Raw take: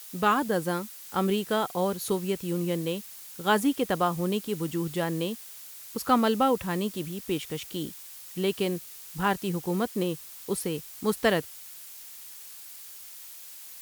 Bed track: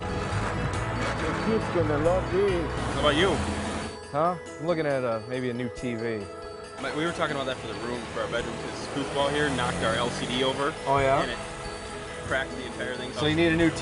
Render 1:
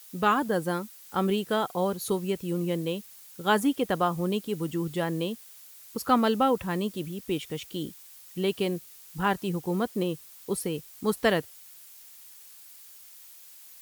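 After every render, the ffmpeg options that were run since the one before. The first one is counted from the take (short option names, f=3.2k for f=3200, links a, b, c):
-af "afftdn=nr=6:nf=-45"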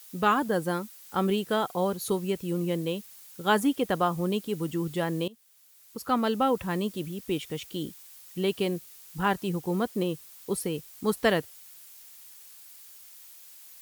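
-filter_complex "[0:a]asplit=2[a][b];[a]atrim=end=5.28,asetpts=PTS-STARTPTS,afade=t=out:st=5.276:d=0.004:c=hsin:silence=0.112202[c];[b]atrim=start=5.28,asetpts=PTS-STARTPTS,afade=t=in:d=1.39:silence=0.112202[d];[c][d]concat=n=2:v=0:a=1"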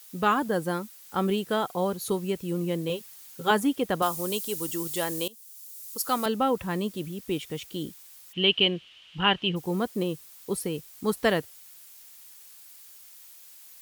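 -filter_complex "[0:a]asettb=1/sr,asplit=3[a][b][c];[a]atrim=end=2.894[d];[b]atrim=start=2.89:end=3.51,asetpts=PTS-STARTPTS,afade=t=in:d=0.004:c=qsin,afade=t=out:st=0.616:d=0.004:c=qsin,aecho=1:1:7.5:0.75,atrim=end_sample=27342[e];[c]atrim=start=3.506[f];[d][e]acrossfade=d=0.004:c1=hsin:c2=qsin[g];[g][f]acrossfade=d=0.004:c1=qsin:c2=hsin,asettb=1/sr,asplit=3[h][i][j];[h]atrim=end=4.024[k];[i]atrim=start=4.02:end=6.26,asetpts=PTS-STARTPTS,afade=t=in:d=0.004:c=qsin,afade=t=out:st=2.236:d=0.004:c=qsin,bass=f=250:g=-10,treble=f=4k:g=14[l];[j]atrim=start=6.256[m];[k][l]acrossfade=d=0.004:c1=hsin:c2=qsin[n];[n][m]acrossfade=d=0.004:c1=qsin:c2=hsin,asplit=3[o][p][q];[o]afade=t=out:st=8.32:d=0.02[r];[p]lowpass=f=3k:t=q:w=9.2,afade=t=in:st=8.32:d=0.02,afade=t=out:st=9.55:d=0.02[s];[q]afade=t=in:st=9.55:d=0.02[t];[r][s][t]amix=inputs=3:normalize=0"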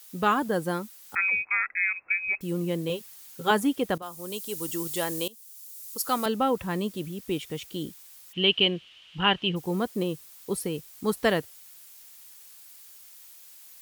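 -filter_complex "[0:a]asettb=1/sr,asplit=3[a][b][c];[a]atrim=end=1.154[d];[b]atrim=start=1.15:end=2.41,asetpts=PTS-STARTPTS,afade=t=in:d=0.004:c=qsin,afade=t=out:st=1.256:d=0.004:c=qsin,lowpass=f=2.3k:t=q:w=0.5098,lowpass=f=2.3k:t=q:w=0.6013,lowpass=f=2.3k:t=q:w=0.9,lowpass=f=2.3k:t=q:w=2.563,afreqshift=-2700[e];[c]atrim=start=2.406[f];[d][e]acrossfade=d=0.004:c1=hsin:c2=qsin[g];[g][f]acrossfade=d=0.004:c1=qsin:c2=hsin,asplit=2[h][i];[h]atrim=end=3.98,asetpts=PTS-STARTPTS,afade=t=out:st=3.976:d=0.004:c=hsin:silence=0.133352[j];[i]atrim=start=3.98,asetpts=PTS-STARTPTS,afade=t=in:d=0.76:silence=0.133352[k];[j][k]concat=n=2:v=0:a=1"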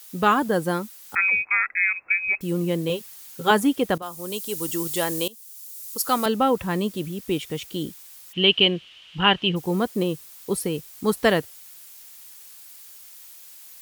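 -af "volume=4.5dB"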